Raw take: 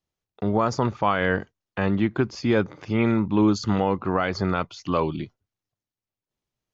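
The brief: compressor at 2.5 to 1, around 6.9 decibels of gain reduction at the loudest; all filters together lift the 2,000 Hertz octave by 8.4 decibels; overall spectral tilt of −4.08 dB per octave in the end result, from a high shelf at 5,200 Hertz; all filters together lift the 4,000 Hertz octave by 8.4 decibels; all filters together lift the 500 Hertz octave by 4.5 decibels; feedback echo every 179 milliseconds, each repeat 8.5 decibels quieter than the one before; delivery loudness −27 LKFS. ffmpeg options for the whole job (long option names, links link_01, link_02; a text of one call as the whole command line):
ffmpeg -i in.wav -af "equalizer=frequency=500:width_type=o:gain=5,equalizer=frequency=2000:width_type=o:gain=9,equalizer=frequency=4000:width_type=o:gain=6.5,highshelf=frequency=5200:gain=3,acompressor=threshold=-23dB:ratio=2.5,aecho=1:1:179|358|537|716:0.376|0.143|0.0543|0.0206,volume=-1dB" out.wav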